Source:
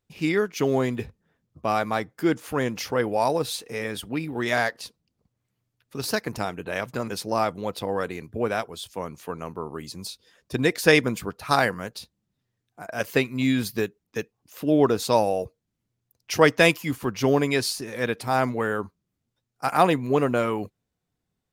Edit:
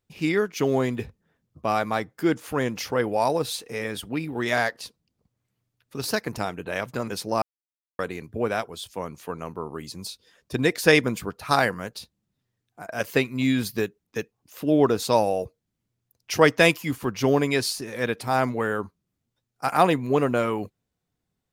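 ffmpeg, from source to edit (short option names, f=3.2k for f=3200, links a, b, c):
-filter_complex "[0:a]asplit=3[a][b][c];[a]atrim=end=7.42,asetpts=PTS-STARTPTS,afade=t=out:st=7.416:d=0.004:c=hsin[d];[b]atrim=start=7.42:end=7.99,asetpts=PTS-STARTPTS,volume=0[e];[c]atrim=start=7.99,asetpts=PTS-STARTPTS,afade=t=in:d=0.004:c=hsin[f];[d][e][f]concat=n=3:v=0:a=1"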